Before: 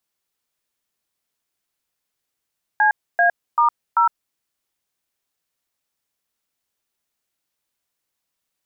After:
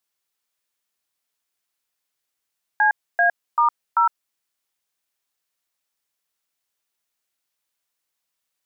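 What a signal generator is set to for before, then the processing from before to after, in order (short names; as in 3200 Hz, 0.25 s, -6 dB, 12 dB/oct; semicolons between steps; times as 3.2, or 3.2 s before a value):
DTMF "CA*0", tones 0.11 s, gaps 0.279 s, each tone -15 dBFS
low shelf 470 Hz -8 dB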